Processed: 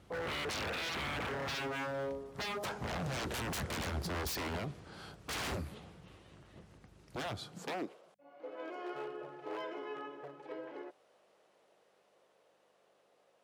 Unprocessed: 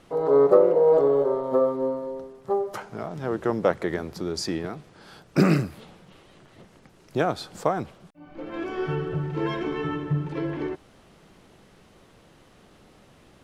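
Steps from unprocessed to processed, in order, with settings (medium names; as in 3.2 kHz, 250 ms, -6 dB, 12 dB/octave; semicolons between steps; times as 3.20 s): Doppler pass-by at 3.48 s, 15 m/s, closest 16 m; mains buzz 50 Hz, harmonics 4, -68 dBFS -4 dB/octave; wavefolder -35.5 dBFS; high-pass sweep 67 Hz -> 540 Hz, 7.24–8.04 s; trim +2 dB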